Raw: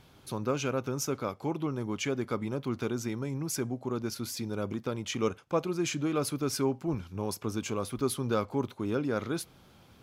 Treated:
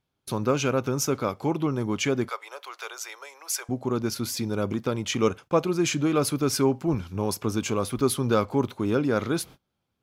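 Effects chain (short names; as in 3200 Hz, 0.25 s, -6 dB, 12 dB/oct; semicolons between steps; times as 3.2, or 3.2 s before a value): gate -49 dBFS, range -29 dB; 2.29–3.69 Bessel high-pass 940 Hz, order 8; gain +6.5 dB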